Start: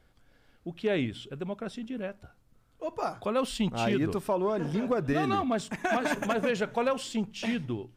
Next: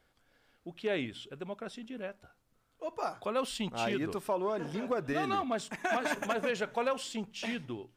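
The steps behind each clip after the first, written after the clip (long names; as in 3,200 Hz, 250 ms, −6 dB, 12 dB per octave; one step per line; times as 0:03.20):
low-shelf EQ 240 Hz −10.5 dB
level −2 dB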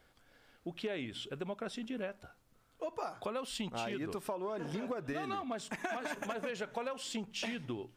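downward compressor 10 to 1, threshold −39 dBFS, peak gain reduction 13 dB
level +4 dB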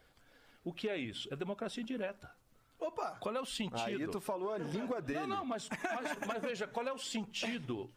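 spectral magnitudes quantised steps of 15 dB
level +1 dB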